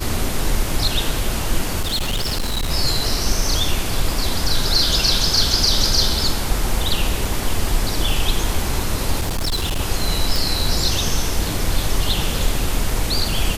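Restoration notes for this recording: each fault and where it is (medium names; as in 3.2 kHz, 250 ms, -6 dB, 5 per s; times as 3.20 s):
1.81–2.72 s: clipped -17.5 dBFS
9.20–9.80 s: clipped -17.5 dBFS
10.36 s: pop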